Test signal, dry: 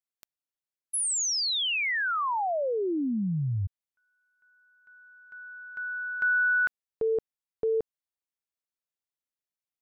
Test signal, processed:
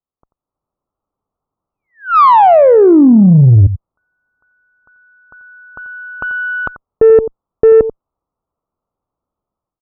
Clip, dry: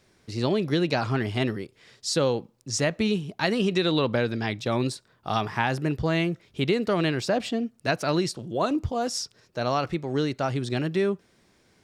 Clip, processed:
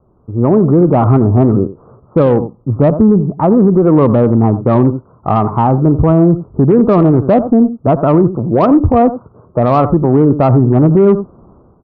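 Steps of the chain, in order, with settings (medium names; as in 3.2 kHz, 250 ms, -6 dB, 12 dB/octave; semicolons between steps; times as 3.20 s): level rider gain up to 14.5 dB; steep low-pass 1.3 kHz 96 dB/octave; bass shelf 98 Hz +8.5 dB; on a send: delay 88 ms -15 dB; on the sum: Chebyshev shaper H 5 -27 dB, 8 -33 dB, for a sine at -2 dBFS; dynamic bell 250 Hz, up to +3 dB, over -25 dBFS, Q 1.8; loudness maximiser +7.5 dB; trim -1 dB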